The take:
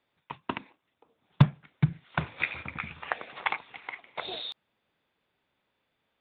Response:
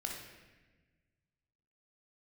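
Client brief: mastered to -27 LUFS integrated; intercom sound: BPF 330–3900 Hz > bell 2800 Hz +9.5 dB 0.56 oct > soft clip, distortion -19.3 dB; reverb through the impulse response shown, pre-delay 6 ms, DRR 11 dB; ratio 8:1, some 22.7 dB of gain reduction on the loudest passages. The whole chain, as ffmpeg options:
-filter_complex "[0:a]acompressor=threshold=-37dB:ratio=8,asplit=2[a][b];[1:a]atrim=start_sample=2205,adelay=6[c];[b][c]afir=irnorm=-1:irlink=0,volume=-11.5dB[d];[a][d]amix=inputs=2:normalize=0,highpass=330,lowpass=3.9k,equalizer=f=2.8k:t=o:w=0.56:g=9.5,asoftclip=threshold=-21.5dB,volume=14.5dB"

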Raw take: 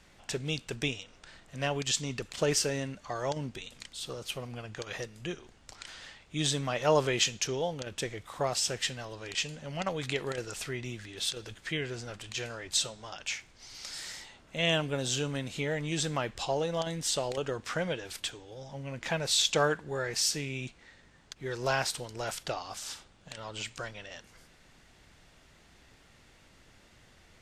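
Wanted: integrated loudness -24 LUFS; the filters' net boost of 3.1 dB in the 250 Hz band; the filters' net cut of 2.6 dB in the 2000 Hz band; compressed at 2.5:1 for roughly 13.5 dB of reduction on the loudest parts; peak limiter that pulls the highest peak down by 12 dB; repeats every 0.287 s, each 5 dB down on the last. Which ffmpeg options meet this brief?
-af "equalizer=f=250:t=o:g=4.5,equalizer=f=2k:t=o:g=-3.5,acompressor=threshold=-41dB:ratio=2.5,alimiter=level_in=11.5dB:limit=-24dB:level=0:latency=1,volume=-11.5dB,aecho=1:1:287|574|861|1148|1435|1722|2009:0.562|0.315|0.176|0.0988|0.0553|0.031|0.0173,volume=20.5dB"

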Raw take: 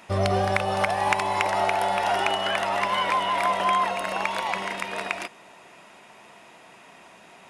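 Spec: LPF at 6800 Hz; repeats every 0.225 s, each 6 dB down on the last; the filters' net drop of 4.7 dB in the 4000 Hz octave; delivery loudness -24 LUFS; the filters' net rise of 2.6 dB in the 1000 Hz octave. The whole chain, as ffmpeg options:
-af "lowpass=6.8k,equalizer=f=1k:t=o:g=3.5,equalizer=f=4k:t=o:g=-7.5,aecho=1:1:225|450|675|900|1125|1350:0.501|0.251|0.125|0.0626|0.0313|0.0157,volume=-2dB"

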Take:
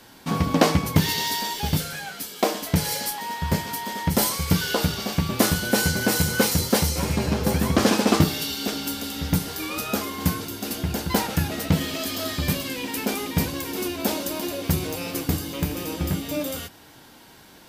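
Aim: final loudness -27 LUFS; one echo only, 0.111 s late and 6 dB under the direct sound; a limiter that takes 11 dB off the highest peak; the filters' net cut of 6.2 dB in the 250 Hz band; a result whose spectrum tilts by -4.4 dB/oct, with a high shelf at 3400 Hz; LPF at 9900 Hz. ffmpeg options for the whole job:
-af "lowpass=9.9k,equalizer=f=250:t=o:g=-9,highshelf=f=3.4k:g=-8,alimiter=limit=-17.5dB:level=0:latency=1,aecho=1:1:111:0.501,volume=2.5dB"

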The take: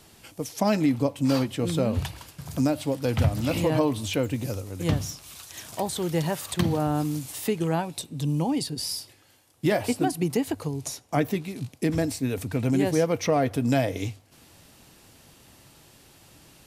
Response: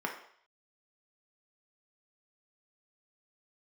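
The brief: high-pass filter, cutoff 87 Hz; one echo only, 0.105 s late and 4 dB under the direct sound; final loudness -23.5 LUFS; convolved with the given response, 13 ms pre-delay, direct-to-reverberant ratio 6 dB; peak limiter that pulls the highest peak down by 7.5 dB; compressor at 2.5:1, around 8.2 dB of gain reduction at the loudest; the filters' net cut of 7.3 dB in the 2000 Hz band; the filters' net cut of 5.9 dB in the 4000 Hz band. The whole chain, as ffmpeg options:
-filter_complex "[0:a]highpass=87,equalizer=f=2k:t=o:g=-8,equalizer=f=4k:t=o:g=-5.5,acompressor=threshold=-31dB:ratio=2.5,alimiter=limit=-24dB:level=0:latency=1,aecho=1:1:105:0.631,asplit=2[a][b];[1:a]atrim=start_sample=2205,adelay=13[c];[b][c]afir=irnorm=-1:irlink=0,volume=-12dB[d];[a][d]amix=inputs=2:normalize=0,volume=9.5dB"

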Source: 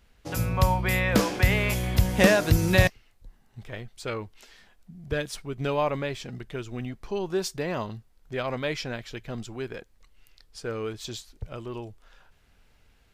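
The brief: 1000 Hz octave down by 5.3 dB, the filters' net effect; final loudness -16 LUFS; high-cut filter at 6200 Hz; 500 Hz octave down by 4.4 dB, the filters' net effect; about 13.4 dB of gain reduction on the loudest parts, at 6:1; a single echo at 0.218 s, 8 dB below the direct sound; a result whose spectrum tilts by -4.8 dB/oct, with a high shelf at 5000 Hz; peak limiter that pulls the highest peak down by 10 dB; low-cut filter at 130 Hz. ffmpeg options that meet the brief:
-af "highpass=130,lowpass=6.2k,equalizer=f=500:t=o:g=-4,equalizer=f=1k:t=o:g=-5,highshelf=f=5k:g=-6.5,acompressor=threshold=-30dB:ratio=6,alimiter=level_in=3.5dB:limit=-24dB:level=0:latency=1,volume=-3.5dB,aecho=1:1:218:0.398,volume=22.5dB"

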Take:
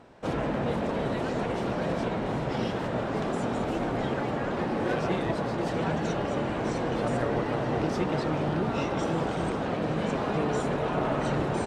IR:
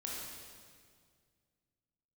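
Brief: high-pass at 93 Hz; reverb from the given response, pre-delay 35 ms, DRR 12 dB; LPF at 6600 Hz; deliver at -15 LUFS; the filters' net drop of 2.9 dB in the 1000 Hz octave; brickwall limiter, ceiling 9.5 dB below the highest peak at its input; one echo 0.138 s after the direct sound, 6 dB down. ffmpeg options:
-filter_complex "[0:a]highpass=93,lowpass=6.6k,equalizer=f=1k:t=o:g=-4,alimiter=limit=-24dB:level=0:latency=1,aecho=1:1:138:0.501,asplit=2[a][b];[1:a]atrim=start_sample=2205,adelay=35[c];[b][c]afir=irnorm=-1:irlink=0,volume=-12.5dB[d];[a][d]amix=inputs=2:normalize=0,volume=16.5dB"

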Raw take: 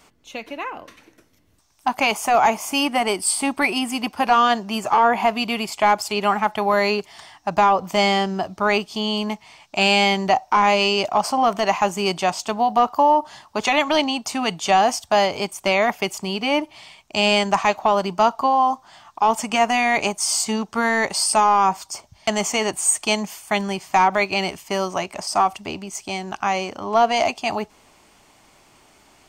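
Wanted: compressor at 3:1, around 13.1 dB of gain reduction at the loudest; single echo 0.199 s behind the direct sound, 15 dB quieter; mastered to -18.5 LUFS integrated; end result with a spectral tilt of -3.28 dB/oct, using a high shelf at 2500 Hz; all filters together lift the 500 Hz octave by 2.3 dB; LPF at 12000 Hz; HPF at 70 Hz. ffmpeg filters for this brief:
-af "highpass=70,lowpass=12k,equalizer=f=500:t=o:g=3.5,highshelf=f=2.5k:g=-5,acompressor=threshold=-30dB:ratio=3,aecho=1:1:199:0.178,volume=12.5dB"

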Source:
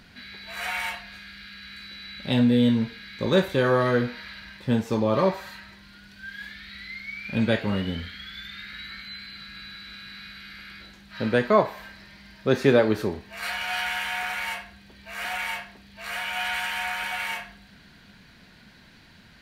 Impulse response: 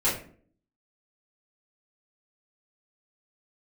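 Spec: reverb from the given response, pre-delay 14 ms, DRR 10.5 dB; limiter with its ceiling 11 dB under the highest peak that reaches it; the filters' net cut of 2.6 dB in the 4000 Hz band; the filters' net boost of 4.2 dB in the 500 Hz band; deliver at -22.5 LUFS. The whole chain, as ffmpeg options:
-filter_complex "[0:a]equalizer=f=500:t=o:g=5,equalizer=f=4k:t=o:g=-3.5,alimiter=limit=-14.5dB:level=0:latency=1,asplit=2[a][b];[1:a]atrim=start_sample=2205,adelay=14[c];[b][c]afir=irnorm=-1:irlink=0,volume=-22.5dB[d];[a][d]amix=inputs=2:normalize=0,volume=4.5dB"

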